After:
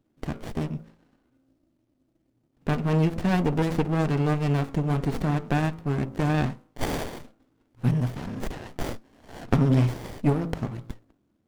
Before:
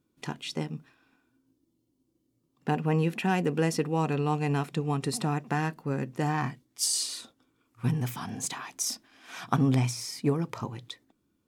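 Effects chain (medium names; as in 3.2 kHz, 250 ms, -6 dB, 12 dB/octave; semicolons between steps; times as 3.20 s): de-hum 54.88 Hz, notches 26; sliding maximum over 33 samples; trim +5 dB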